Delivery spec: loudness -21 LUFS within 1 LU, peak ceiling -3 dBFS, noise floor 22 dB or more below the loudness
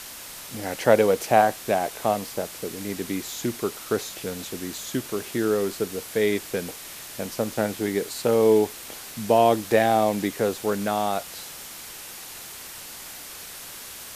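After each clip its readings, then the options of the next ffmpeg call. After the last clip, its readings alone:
noise floor -40 dBFS; noise floor target -47 dBFS; loudness -24.5 LUFS; peak level -3.5 dBFS; loudness target -21.0 LUFS
-> -af "afftdn=nr=7:nf=-40"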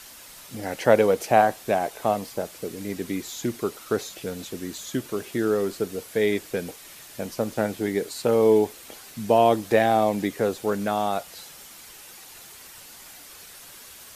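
noise floor -46 dBFS; noise floor target -47 dBFS
-> -af "afftdn=nr=6:nf=-46"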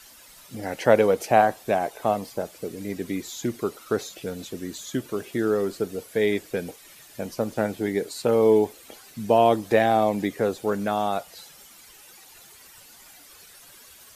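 noise floor -50 dBFS; loudness -24.5 LUFS; peak level -3.5 dBFS; loudness target -21.0 LUFS
-> -af "volume=1.5,alimiter=limit=0.708:level=0:latency=1"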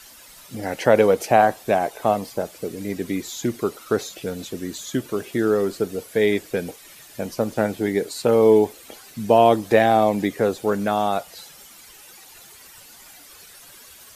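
loudness -21.5 LUFS; peak level -3.0 dBFS; noise floor -46 dBFS

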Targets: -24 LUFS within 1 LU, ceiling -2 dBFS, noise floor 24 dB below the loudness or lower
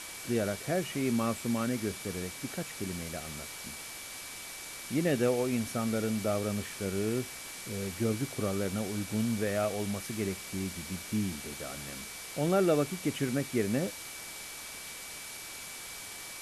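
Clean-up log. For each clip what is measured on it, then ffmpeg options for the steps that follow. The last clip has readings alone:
steady tone 2.3 kHz; tone level -49 dBFS; noise floor -44 dBFS; noise floor target -58 dBFS; loudness -33.5 LUFS; peak level -16.0 dBFS; loudness target -24.0 LUFS
-> -af "bandreject=f=2300:w=30"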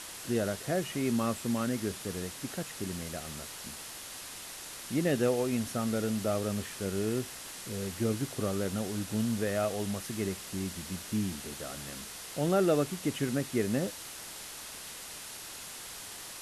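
steady tone not found; noise floor -44 dBFS; noise floor target -58 dBFS
-> -af "afftdn=nr=14:nf=-44"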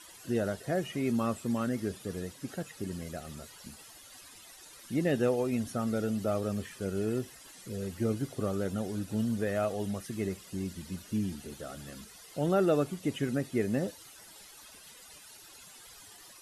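noise floor -53 dBFS; noise floor target -57 dBFS
-> -af "afftdn=nr=6:nf=-53"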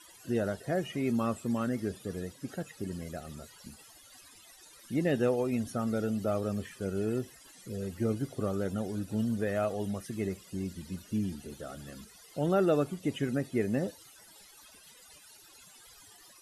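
noise floor -56 dBFS; noise floor target -57 dBFS
-> -af "afftdn=nr=6:nf=-56"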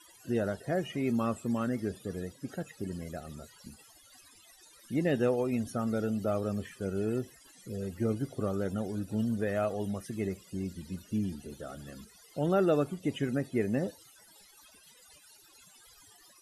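noise floor -59 dBFS; loudness -33.0 LUFS; peak level -16.0 dBFS; loudness target -24.0 LUFS
-> -af "volume=2.82"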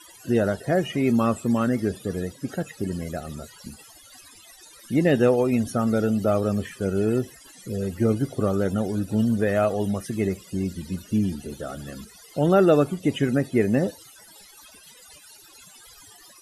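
loudness -24.0 LUFS; peak level -7.0 dBFS; noise floor -50 dBFS

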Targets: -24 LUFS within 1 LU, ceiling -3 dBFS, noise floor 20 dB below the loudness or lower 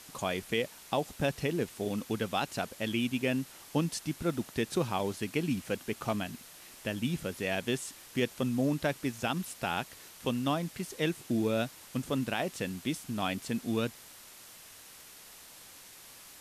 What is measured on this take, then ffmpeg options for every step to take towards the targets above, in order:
noise floor -52 dBFS; noise floor target -54 dBFS; loudness -33.5 LUFS; peak level -17.0 dBFS; loudness target -24.0 LUFS
-> -af "afftdn=nr=6:nf=-52"
-af "volume=2.99"

